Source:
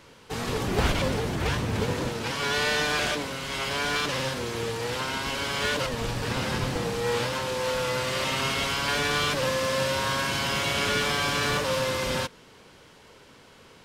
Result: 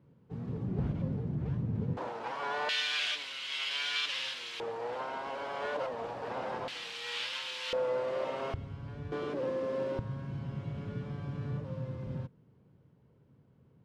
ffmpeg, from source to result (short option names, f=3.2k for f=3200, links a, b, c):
-af "asetnsamples=n=441:p=0,asendcmd='1.97 bandpass f 820;2.69 bandpass f 3100;4.6 bandpass f 700;6.68 bandpass f 3100;7.73 bandpass f 560;8.54 bandpass f 100;9.12 bandpass f 360;9.99 bandpass f 130',bandpass=f=150:t=q:w=2:csg=0"